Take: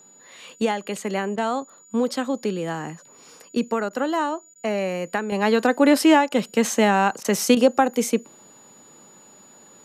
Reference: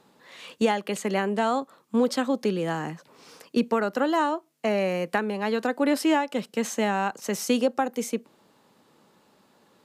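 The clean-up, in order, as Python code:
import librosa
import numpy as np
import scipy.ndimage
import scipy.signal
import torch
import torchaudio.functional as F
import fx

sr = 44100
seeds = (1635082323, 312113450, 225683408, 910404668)

y = fx.notch(x, sr, hz=6900.0, q=30.0)
y = fx.fix_interpolate(y, sr, at_s=(1.36, 3.89, 4.54, 6.29, 7.23, 7.55), length_ms=15.0)
y = fx.fix_level(y, sr, at_s=5.32, step_db=-7.0)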